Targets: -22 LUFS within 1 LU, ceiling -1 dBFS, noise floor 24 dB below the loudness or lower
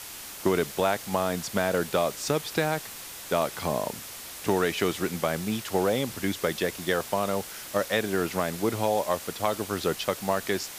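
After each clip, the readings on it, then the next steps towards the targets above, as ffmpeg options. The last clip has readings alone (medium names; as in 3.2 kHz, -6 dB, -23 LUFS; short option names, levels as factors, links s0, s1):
noise floor -41 dBFS; noise floor target -52 dBFS; loudness -28.0 LUFS; peak level -10.0 dBFS; loudness target -22.0 LUFS
-> -af "afftdn=nr=11:nf=-41"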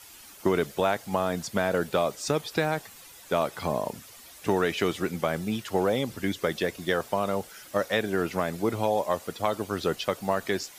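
noise floor -49 dBFS; noise floor target -53 dBFS
-> -af "afftdn=nr=6:nf=-49"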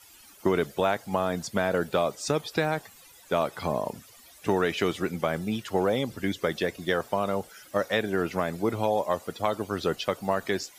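noise floor -53 dBFS; loudness -28.5 LUFS; peak level -10.5 dBFS; loudness target -22.0 LUFS
-> -af "volume=2.11"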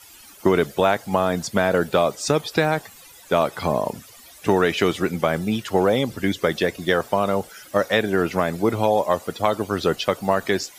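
loudness -22.0 LUFS; peak level -4.0 dBFS; noise floor -46 dBFS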